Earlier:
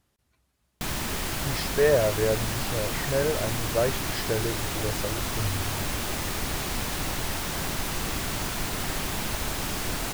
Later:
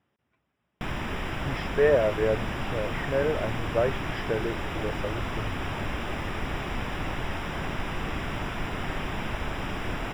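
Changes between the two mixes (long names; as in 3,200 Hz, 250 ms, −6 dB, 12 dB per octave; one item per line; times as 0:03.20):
speech: add high-pass filter 130 Hz
master: add Savitzky-Golay smoothing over 25 samples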